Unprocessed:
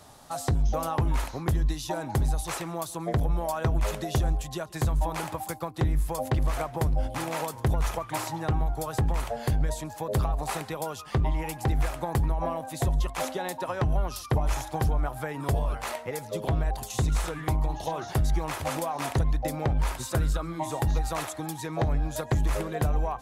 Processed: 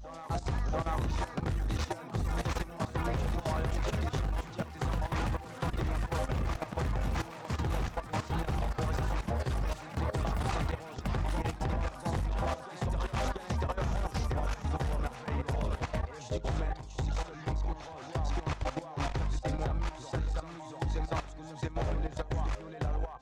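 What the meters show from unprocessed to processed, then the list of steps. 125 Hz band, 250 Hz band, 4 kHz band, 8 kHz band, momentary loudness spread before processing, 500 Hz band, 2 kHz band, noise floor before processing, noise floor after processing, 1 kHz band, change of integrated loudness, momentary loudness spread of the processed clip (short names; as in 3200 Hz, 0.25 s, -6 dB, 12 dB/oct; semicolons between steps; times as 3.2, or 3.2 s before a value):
-5.0 dB, -4.5 dB, -4.5 dB, -10.5 dB, 5 LU, -5.5 dB, -3.5 dB, -42 dBFS, -45 dBFS, -5.0 dB, -5.5 dB, 4 LU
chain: LPF 6500 Hz 24 dB/oct; echoes that change speed 0.719 s, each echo +7 st, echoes 3, each echo -6 dB; one-sided clip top -25.5 dBFS, bottom -16 dBFS; on a send: reverse echo 0.69 s -4.5 dB; on the sum: level quantiser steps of 14 dB; gain -2.5 dB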